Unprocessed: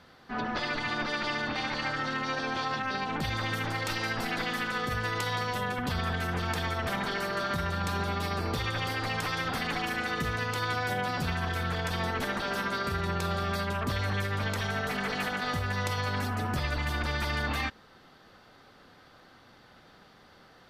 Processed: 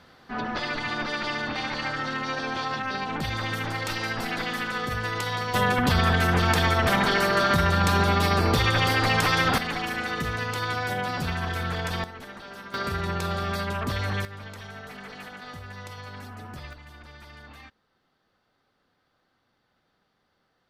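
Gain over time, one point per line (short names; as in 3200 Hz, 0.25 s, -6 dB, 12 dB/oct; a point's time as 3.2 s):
+2 dB
from 5.54 s +9.5 dB
from 9.58 s +2 dB
from 12.04 s -10 dB
from 12.74 s +2 dB
from 14.25 s -9.5 dB
from 16.73 s -16 dB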